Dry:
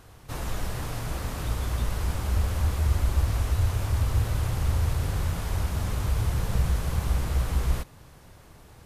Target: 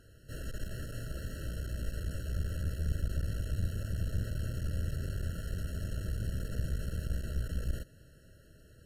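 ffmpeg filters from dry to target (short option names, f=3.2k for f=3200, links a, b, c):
-af "aeval=exprs='clip(val(0),-1,0.0266)':c=same,afftfilt=real='re*eq(mod(floor(b*sr/1024/650),2),0)':imag='im*eq(mod(floor(b*sr/1024/650),2),0)':win_size=1024:overlap=0.75,volume=-6.5dB"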